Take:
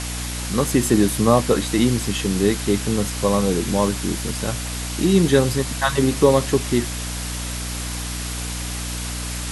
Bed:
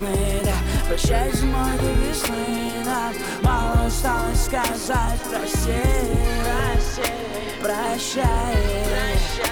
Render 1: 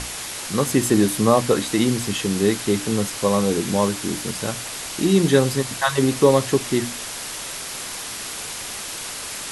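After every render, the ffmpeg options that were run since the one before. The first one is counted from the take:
-af "bandreject=f=60:t=h:w=6,bandreject=f=120:t=h:w=6,bandreject=f=180:t=h:w=6,bandreject=f=240:t=h:w=6,bandreject=f=300:t=h:w=6"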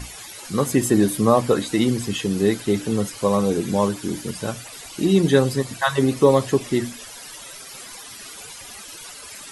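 -af "afftdn=nr=14:nf=-32"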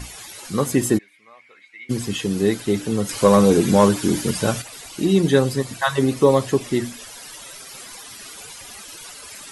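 -filter_complex "[0:a]asplit=3[s0][s1][s2];[s0]afade=t=out:st=0.97:d=0.02[s3];[s1]bandpass=f=2200:t=q:w=16,afade=t=in:st=0.97:d=0.02,afade=t=out:st=1.89:d=0.02[s4];[s2]afade=t=in:st=1.89:d=0.02[s5];[s3][s4][s5]amix=inputs=3:normalize=0,asettb=1/sr,asplit=3[s6][s7][s8];[s6]atrim=end=3.094[s9];[s7]atrim=start=3.09:end=4.62,asetpts=PTS-STARTPTS,afade=t=in:d=0.004:c=qsin,afade=t=out:st=1.526:d=0.004:c=qsin,acontrast=83[s10];[s8]atrim=start=4.616[s11];[s9][s10]acrossfade=d=0.004:c1=hsin:c2=qsin[s12];[s12][s11]acrossfade=d=0.004:c1=qsin:c2=hsin"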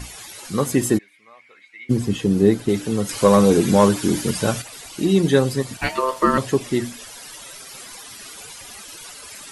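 -filter_complex "[0:a]asettb=1/sr,asplit=3[s0][s1][s2];[s0]atrim=end=1.894[s3];[s1]atrim=start=1.89:end=2.69,asetpts=PTS-STARTPTS,afade=t=in:d=0.004:c=qsin,afade=t=out:st=0.796:d=0.004:c=qsin,tiltshelf=f=850:g=5.5[s4];[s2]atrim=start=2.686[s5];[s3][s4]acrossfade=d=0.004:c1=hsin:c2=qsin[s6];[s6][s5]acrossfade=d=0.004:c1=qsin:c2=hsin,asettb=1/sr,asplit=3[s7][s8][s9];[s7]atrim=end=5.774[s10];[s8]atrim=start=5.77:end=6.38,asetpts=PTS-STARTPTS,afade=t=in:d=0.004:c=qsin,afade=t=out:st=0.606:d=0.004:c=qsin,aeval=exprs='val(0)*sin(2*PI*780*n/s)':c=same[s11];[s9]atrim=start=6.376[s12];[s10][s11]acrossfade=d=0.004:c1=hsin:c2=qsin[s13];[s13][s12]acrossfade=d=0.004:c1=qsin:c2=hsin"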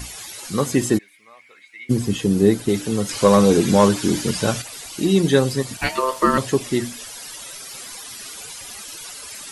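-filter_complex "[0:a]acrossover=split=6700[s0][s1];[s1]acompressor=threshold=0.00562:ratio=4:attack=1:release=60[s2];[s0][s2]amix=inputs=2:normalize=0,highshelf=f=5900:g=10.5"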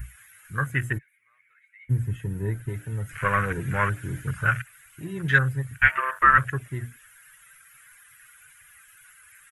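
-af "afwtdn=0.0355,firequalizer=gain_entry='entry(140,0);entry(200,-21);entry(540,-17);entry(860,-14);entry(1500,12);entry(4500,-21);entry(7000,-8);entry(11000,3)':delay=0.05:min_phase=1"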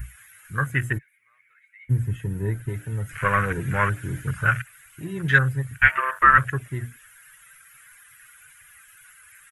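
-af "volume=1.26"

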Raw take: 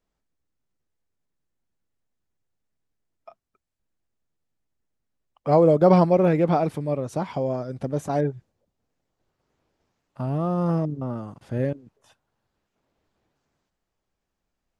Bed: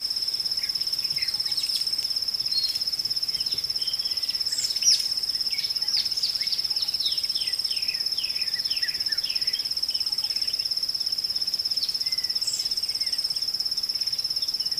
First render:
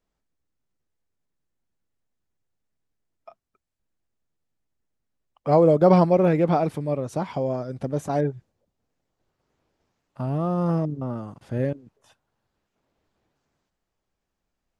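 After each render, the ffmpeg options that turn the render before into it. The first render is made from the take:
-af anull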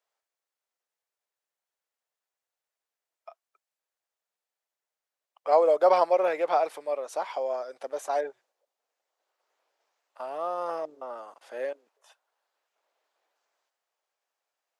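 -af "highpass=f=540:w=0.5412,highpass=f=540:w=1.3066"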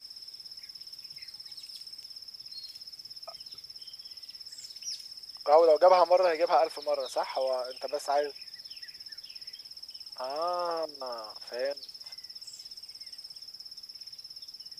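-filter_complex "[1:a]volume=0.119[s0];[0:a][s0]amix=inputs=2:normalize=0"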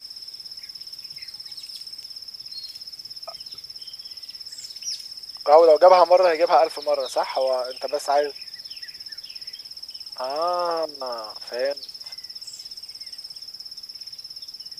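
-af "volume=2.37"

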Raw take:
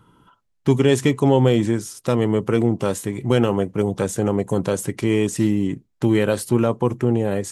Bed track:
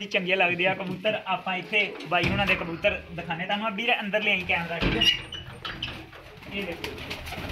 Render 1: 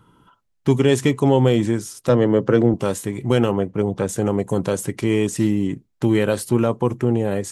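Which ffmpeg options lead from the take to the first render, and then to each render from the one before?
-filter_complex "[0:a]asettb=1/sr,asplit=3[s0][s1][s2];[s0]atrim=end=2.094[s3];[s1]atrim=start=2.09:end=2.74,asetpts=PTS-STARTPTS,afade=t=in:d=0.004:c=qsin,afade=t=out:st=0.646:d=0.004:c=qsin,highpass=120,equalizer=f=130:t=q:w=4:g=8,equalizer=f=290:t=q:w=4:g=6,equalizer=f=540:t=q:w=4:g=9,equalizer=f=1600:t=q:w=4:g=7,equalizer=f=2400:t=q:w=4:g=-6,lowpass=f=6300:w=0.5412,lowpass=f=6300:w=1.3066[s4];[s2]atrim=start=2.736[s5];[s3][s4]acrossfade=d=0.004:c1=hsin:c2=qsin[s6];[s6][s5]acrossfade=d=0.004:c1=qsin:c2=hsin,asettb=1/sr,asplit=3[s7][s8][s9];[s7]atrim=end=3.514[s10];[s8]atrim=start=3.51:end=4.09,asetpts=PTS-STARTPTS,afade=t=in:d=0.004:c=qsin,afade=t=out:st=0.576:d=0.004:c=qsin,lowpass=f=2900:p=1[s11];[s9]atrim=start=4.086[s12];[s10][s11]acrossfade=d=0.004:c1=hsin:c2=qsin[s13];[s13][s12]acrossfade=d=0.004:c1=qsin:c2=hsin"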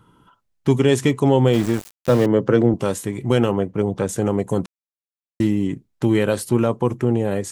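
-filter_complex "[0:a]asettb=1/sr,asplit=3[s0][s1][s2];[s0]atrim=end=1.534[s3];[s1]atrim=start=1.53:end=2.26,asetpts=PTS-STARTPTS,afade=t=in:d=0.004:c=qsin,afade=t=out:st=0.726:d=0.004:c=qsin,aeval=exprs='val(0)*gte(abs(val(0)),0.0501)':c=same[s4];[s2]atrim=start=2.256[s5];[s3][s4]acrossfade=d=0.004:c1=hsin:c2=qsin[s6];[s6][s5]acrossfade=d=0.004:c1=qsin:c2=hsin,asplit=3[s7][s8][s9];[s7]atrim=end=4.66,asetpts=PTS-STARTPTS,afade=t=out:st=4.656:d=0.004:c=hsin[s10];[s8]atrim=start=4.66:end=5.4,asetpts=PTS-STARTPTS,volume=0[s11];[s9]atrim=start=5.4,asetpts=PTS-STARTPTS,afade=t=in:d=0.004:c=hsin[s12];[s10][s11][s12]concat=n=3:v=0:a=1"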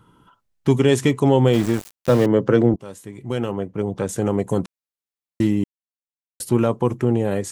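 -filter_complex "[0:a]asplit=4[s0][s1][s2][s3];[s0]atrim=end=2.76,asetpts=PTS-STARTPTS,afade=t=out:st=2.756:d=0.004:c=hsin:silence=0.11885[s4];[s1]atrim=start=2.76:end=5.64,asetpts=PTS-STARTPTS,afade=t=in:d=1.66:silence=0.11885,afade=t=out:st=2.876:d=0.004:c=hsin[s5];[s2]atrim=start=5.64:end=6.4,asetpts=PTS-STARTPTS,volume=0[s6];[s3]atrim=start=6.4,asetpts=PTS-STARTPTS,afade=t=in:d=0.004:c=hsin[s7];[s4][s5][s6][s7]concat=n=4:v=0:a=1"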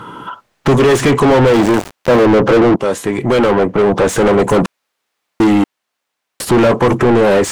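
-filter_complex "[0:a]asplit=2[s0][s1];[s1]asoftclip=type=tanh:threshold=0.178,volume=0.447[s2];[s0][s2]amix=inputs=2:normalize=0,asplit=2[s3][s4];[s4]highpass=f=720:p=1,volume=50.1,asoftclip=type=tanh:threshold=0.75[s5];[s3][s5]amix=inputs=2:normalize=0,lowpass=f=1600:p=1,volume=0.501"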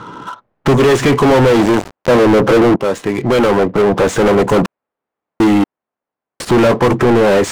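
-af "adynamicsmooth=sensitivity=7:basefreq=940"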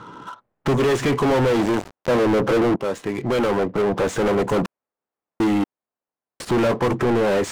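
-af "volume=0.376"

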